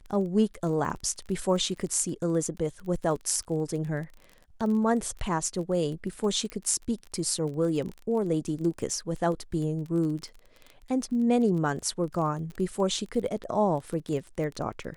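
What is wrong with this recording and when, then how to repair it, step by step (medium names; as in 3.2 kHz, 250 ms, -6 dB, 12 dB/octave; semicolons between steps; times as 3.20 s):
crackle 24 per s -34 dBFS
6.50 s: pop -22 dBFS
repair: de-click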